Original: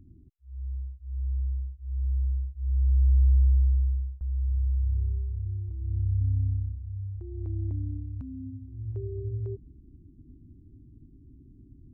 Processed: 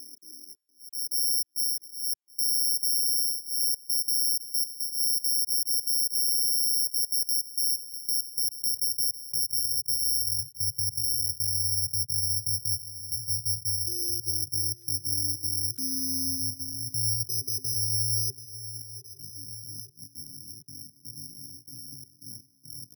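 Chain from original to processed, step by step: random spectral dropouts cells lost 37%; thinning echo 0.368 s, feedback 18%, high-pass 190 Hz, level -16 dB; compressor 8:1, threshold -31 dBFS, peak gain reduction 13.5 dB; on a send: echo 0.818 s -16.5 dB; on the sum: limiter -30.5 dBFS, peak gain reduction 5 dB; careless resampling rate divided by 8×, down filtered, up zero stuff; dynamic EQ 160 Hz, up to -6 dB, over -57 dBFS, Q 2.5; high-pass sweep 390 Hz -> 130 Hz, 3.4–5.36; tempo 0.52×; HPF 85 Hz; notch 390 Hz, Q 12

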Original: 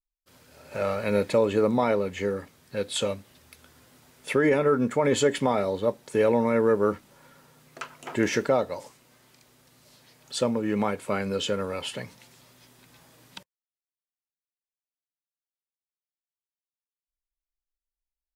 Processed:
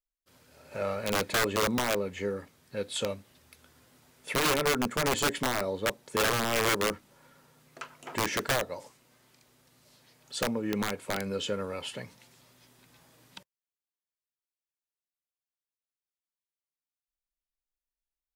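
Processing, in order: wrapped overs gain 16 dB; gain -4.5 dB

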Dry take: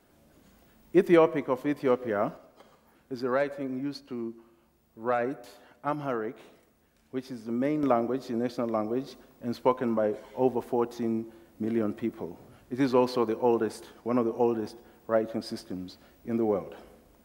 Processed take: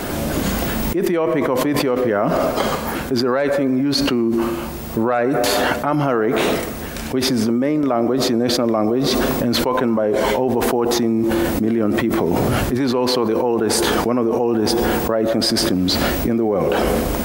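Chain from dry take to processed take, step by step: fast leveller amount 100%; gain -1.5 dB

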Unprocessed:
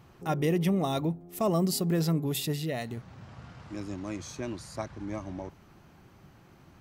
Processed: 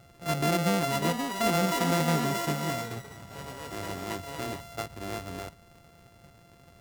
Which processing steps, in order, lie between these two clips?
sample sorter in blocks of 64 samples; echoes that change speed 0.723 s, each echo +6 st, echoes 3, each echo -6 dB

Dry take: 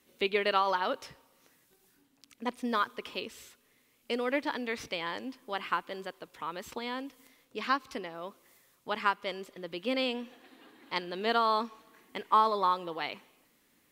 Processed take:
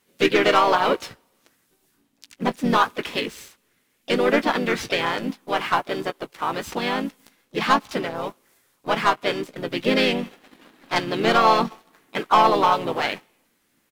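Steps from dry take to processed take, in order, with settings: sample leveller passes 2; doubler 18 ms -13 dB; harmoniser -7 st -10 dB, -4 st -4 dB, +3 st -12 dB; gain +3 dB

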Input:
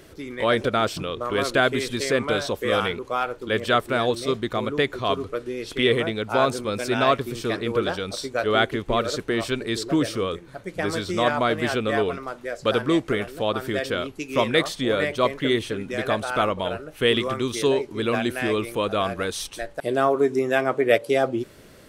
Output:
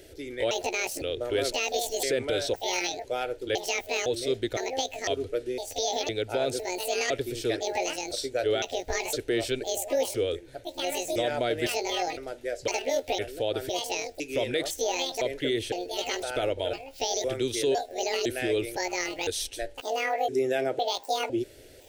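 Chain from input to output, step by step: trilling pitch shifter +10 st, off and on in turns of 0.507 s; fixed phaser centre 460 Hz, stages 4; limiter -17.5 dBFS, peak gain reduction 9.5 dB

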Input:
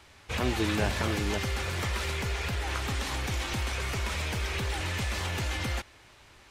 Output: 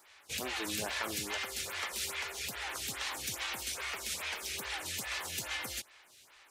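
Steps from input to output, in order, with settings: tilt +3.5 dB/oct; photocell phaser 2.4 Hz; gain -4 dB

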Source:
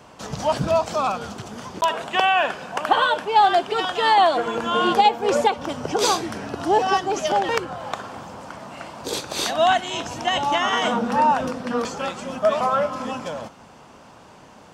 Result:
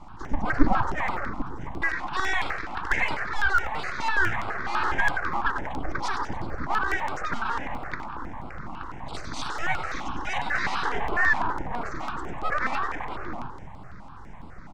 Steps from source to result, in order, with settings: spectral gate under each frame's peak -15 dB strong; resonant low shelf 220 Hz +12 dB, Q 3; added noise brown -37 dBFS; on a send: frequency-shifting echo 95 ms, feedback 61%, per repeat -45 Hz, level -8 dB; on the sum: full-wave rectifier; LPF 7900 Hz 24 dB/oct; band shelf 1300 Hz +10 dB; step phaser 12 Hz 440–6200 Hz; gain -6 dB

